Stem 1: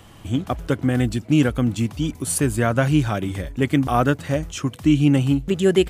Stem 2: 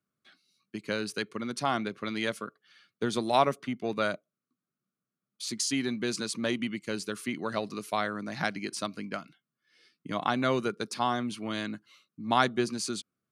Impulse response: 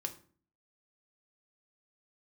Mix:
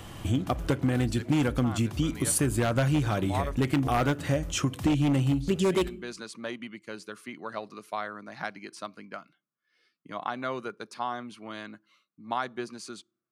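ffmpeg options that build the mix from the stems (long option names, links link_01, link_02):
-filter_complex "[0:a]volume=0.5dB,asplit=2[link_01][link_02];[link_02]volume=-8.5dB[link_03];[1:a]equalizer=frequency=1000:width_type=o:width=2.5:gain=8.5,volume=-11dB,asplit=2[link_04][link_05];[link_05]volume=-21.5dB[link_06];[2:a]atrim=start_sample=2205[link_07];[link_03][link_06]amix=inputs=2:normalize=0[link_08];[link_08][link_07]afir=irnorm=-1:irlink=0[link_09];[link_01][link_04][link_09]amix=inputs=3:normalize=0,aeval=exprs='0.376*(abs(mod(val(0)/0.376+3,4)-2)-1)':channel_layout=same,acompressor=threshold=-25dB:ratio=3"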